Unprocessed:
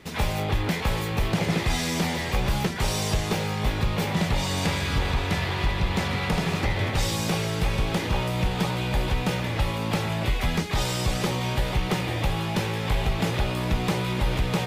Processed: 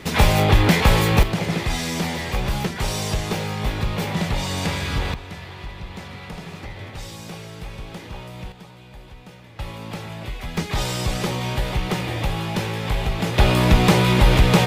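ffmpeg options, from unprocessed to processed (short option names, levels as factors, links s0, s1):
-af "asetnsamples=n=441:p=0,asendcmd='1.23 volume volume 1dB;5.14 volume volume -10dB;8.52 volume volume -17.5dB;9.59 volume volume -6.5dB;10.57 volume volume 1.5dB;13.38 volume volume 10dB',volume=3.16"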